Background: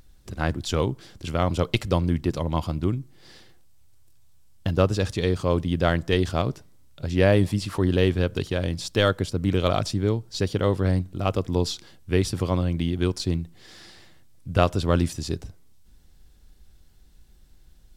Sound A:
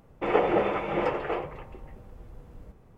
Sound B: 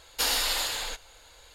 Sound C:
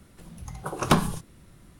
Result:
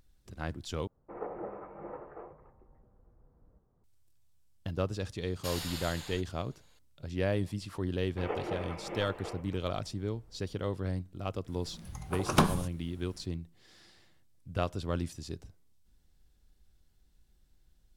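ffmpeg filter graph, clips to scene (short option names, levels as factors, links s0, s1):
-filter_complex "[1:a]asplit=2[s0][s1];[0:a]volume=0.251[s2];[s0]lowpass=f=1500:w=0.5412,lowpass=f=1500:w=1.3066[s3];[s2]asplit=2[s4][s5];[s4]atrim=end=0.874[s6];[s3]atrim=end=2.97,asetpts=PTS-STARTPTS,volume=0.15[s7];[s5]atrim=start=3.836[s8];[2:a]atrim=end=1.54,asetpts=PTS-STARTPTS,volume=0.211,afade=t=in:d=0.004:c=hsin,afade=t=out:st=1.536:d=0.004:c=hsin,adelay=231525S[s9];[s1]atrim=end=2.97,asetpts=PTS-STARTPTS,volume=0.224,afade=t=in:d=0.004:c=hsin,afade=t=out:st=2.966:d=0.004:c=hsin,adelay=7950[s10];[3:a]atrim=end=1.79,asetpts=PTS-STARTPTS,volume=0.631,afade=t=in:d=0.004:c=hsin,afade=t=out:st=1.786:d=0.004:c=hsin,adelay=11470[s11];[s6][s7]acrossfade=d=0.004:c1=hsin:c2=hsin[s12];[s12][s8]acrossfade=d=0.004:c1=hsin:c2=hsin[s13];[s13][s9][s10][s11]amix=inputs=4:normalize=0"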